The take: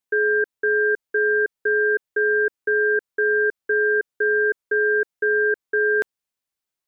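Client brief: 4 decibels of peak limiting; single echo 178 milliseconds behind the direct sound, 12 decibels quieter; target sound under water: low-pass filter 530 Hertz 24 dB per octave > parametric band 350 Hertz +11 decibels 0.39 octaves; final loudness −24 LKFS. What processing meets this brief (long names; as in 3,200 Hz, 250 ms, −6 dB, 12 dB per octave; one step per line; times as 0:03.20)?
brickwall limiter −17 dBFS
low-pass filter 530 Hz 24 dB per octave
parametric band 350 Hz +11 dB 0.39 octaves
single-tap delay 178 ms −12 dB
level +1.5 dB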